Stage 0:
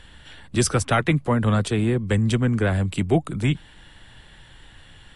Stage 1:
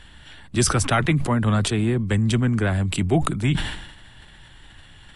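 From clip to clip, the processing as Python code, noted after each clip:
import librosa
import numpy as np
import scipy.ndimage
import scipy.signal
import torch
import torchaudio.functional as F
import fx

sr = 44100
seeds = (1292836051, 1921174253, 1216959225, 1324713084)

y = fx.peak_eq(x, sr, hz=490.0, db=-6.0, octaves=0.32)
y = fx.sustainer(y, sr, db_per_s=60.0)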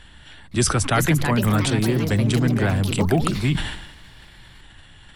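y = fx.echo_pitch(x, sr, ms=515, semitones=4, count=3, db_per_echo=-6.0)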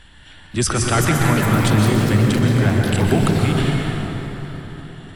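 y = fx.rev_plate(x, sr, seeds[0], rt60_s=4.2, hf_ratio=0.5, predelay_ms=110, drr_db=-0.5)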